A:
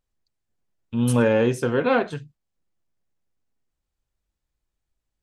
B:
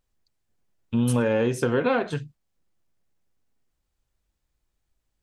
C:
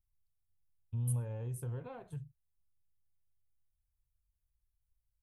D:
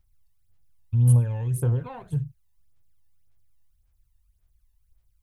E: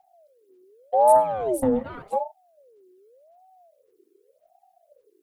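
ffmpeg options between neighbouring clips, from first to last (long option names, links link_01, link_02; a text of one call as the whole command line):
ffmpeg -i in.wav -af "acompressor=threshold=-23dB:ratio=6,volume=4dB" out.wav
ffmpeg -i in.wav -af "firequalizer=gain_entry='entry(110,0);entry(220,-23);entry(890,-17);entry(1400,-26);entry(3500,-25);entry(5200,-28);entry(10000,-1)':delay=0.05:min_phase=1,volume=-4.5dB" out.wav
ffmpeg -i in.wav -af "aphaser=in_gain=1:out_gain=1:delay=1.1:decay=0.6:speed=1.8:type=sinusoidal,volume=9dB" out.wav
ffmpeg -i in.wav -af "aeval=exprs='val(0)*sin(2*PI*560*n/s+560*0.35/0.86*sin(2*PI*0.86*n/s))':channel_layout=same,volume=4dB" out.wav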